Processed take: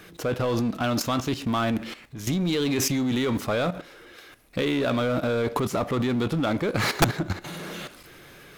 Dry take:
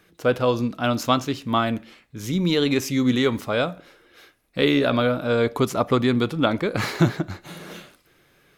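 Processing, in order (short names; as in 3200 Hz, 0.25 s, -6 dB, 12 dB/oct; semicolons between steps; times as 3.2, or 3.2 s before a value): power-law curve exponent 0.7; level quantiser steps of 12 dB; wrapped overs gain 10 dB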